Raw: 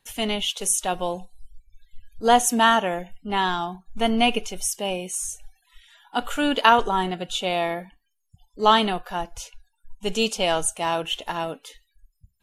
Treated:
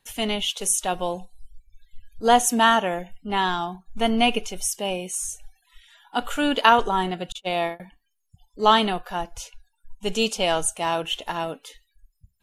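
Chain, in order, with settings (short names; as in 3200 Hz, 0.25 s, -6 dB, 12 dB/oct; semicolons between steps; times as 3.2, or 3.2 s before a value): 7.32–7.8 gate -24 dBFS, range -42 dB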